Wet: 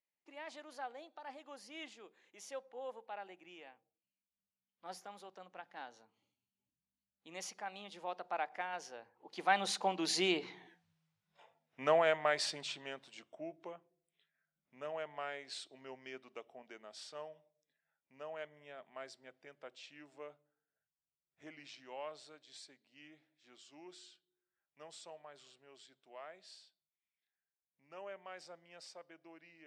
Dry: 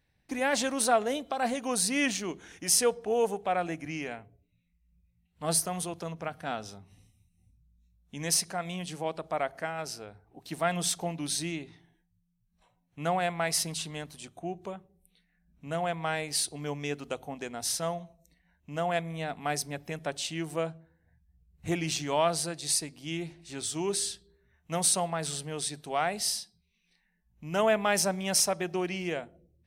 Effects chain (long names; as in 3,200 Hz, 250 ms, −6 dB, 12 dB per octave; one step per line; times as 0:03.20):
source passing by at 0:10.75, 37 m/s, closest 8.5 metres
band-pass filter 390–4,100 Hz
level +14.5 dB